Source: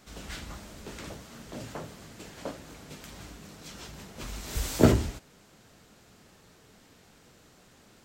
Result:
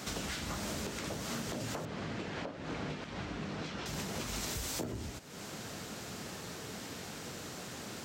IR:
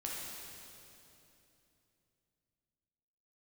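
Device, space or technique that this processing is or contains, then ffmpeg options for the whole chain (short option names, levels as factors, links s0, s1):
broadcast voice chain: -filter_complex "[0:a]highpass=84,deesser=0.65,acompressor=threshold=0.00447:ratio=5,equalizer=f=5700:t=o:w=0.77:g=2,alimiter=level_in=7.08:limit=0.0631:level=0:latency=1:release=212,volume=0.141,asettb=1/sr,asplit=3[s0][s1][s2];[s0]atrim=end=1.854[s3];[s1]atrim=start=1.85:end=3.86,asetpts=PTS-STARTPTS,afade=t=in:d=0.004:c=qsin,afade=t=out:st=2.006:d=0.004:c=qsin,lowpass=3100[s4];[s2]atrim=start=3.856[s5];[s3][s4]acrossfade=d=0.004:c1=hsin:c2=qsin[s6];[s6][s5]acrossfade=d=0.004:c1=qsin:c2=hsin,volume=4.73"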